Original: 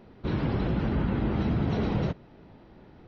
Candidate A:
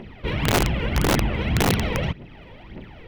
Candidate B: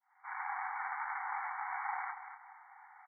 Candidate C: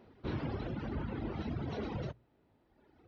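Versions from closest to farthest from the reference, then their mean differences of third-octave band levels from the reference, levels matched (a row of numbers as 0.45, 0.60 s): C, A, B; 2.5, 7.0, 19.5 dB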